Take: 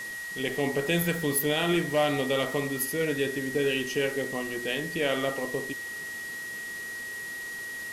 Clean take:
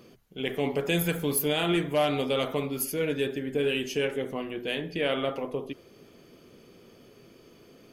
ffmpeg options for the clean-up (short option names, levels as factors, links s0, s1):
-af "bandreject=f=1900:w=30,afwtdn=0.0063"